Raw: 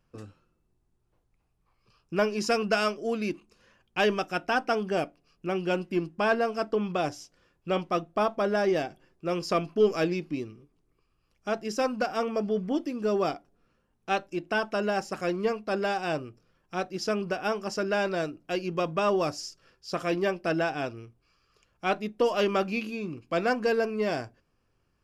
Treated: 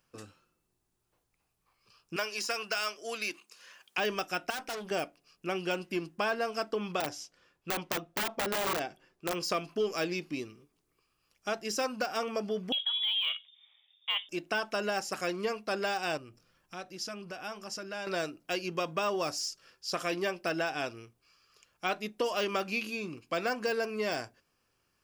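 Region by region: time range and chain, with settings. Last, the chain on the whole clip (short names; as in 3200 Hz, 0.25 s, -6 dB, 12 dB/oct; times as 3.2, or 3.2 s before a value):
2.16–3.98 HPF 1200 Hz 6 dB/oct + three-band squash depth 40%
4.5–4.91 high shelf 8000 Hz +5 dB + tube stage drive 34 dB, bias 0.6
7–9.41 high shelf 6000 Hz -9 dB + wrapped overs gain 21 dB
12.72–14.29 inverted band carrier 3600 Hz + HPF 440 Hz 24 dB/oct
16.17–18.07 low shelf 150 Hz +7.5 dB + notch 430 Hz, Q 8.6 + compressor 2:1, threshold -44 dBFS
whole clip: de-esser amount 90%; tilt +2.5 dB/oct; compressor 2.5:1, threshold -29 dBFS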